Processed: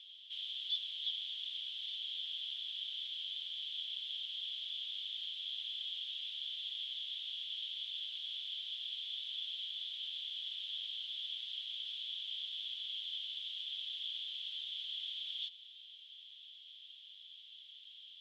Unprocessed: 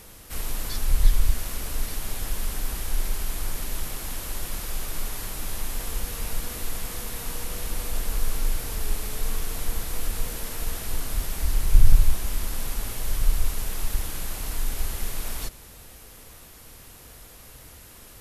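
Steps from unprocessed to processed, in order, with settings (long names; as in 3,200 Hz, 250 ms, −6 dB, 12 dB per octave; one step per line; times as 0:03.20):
flat-topped band-pass 3,300 Hz, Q 7.1
level +10.5 dB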